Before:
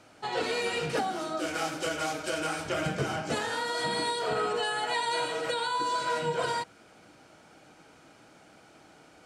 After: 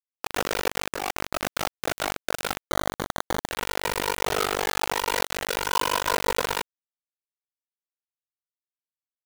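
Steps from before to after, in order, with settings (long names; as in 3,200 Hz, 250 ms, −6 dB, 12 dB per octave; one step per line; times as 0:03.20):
flat-topped bell 5,300 Hz −15.5 dB 2.6 octaves
amplitude modulation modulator 49 Hz, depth 90%
high-pass filter 320 Hz 12 dB per octave
on a send: bucket-brigade delay 101 ms, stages 2,048, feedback 35%, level −20 dB
0:02.68–0:03.47: on the sum: sample-rate reduction 2,600 Hz, jitter 0%
0:05.16–0:05.56: high shelf with overshoot 1,700 Hz +8 dB, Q 1.5
bit reduction 5 bits
0:00.81–0:01.68: compressor whose output falls as the input rises −37 dBFS, ratio −1
level +7.5 dB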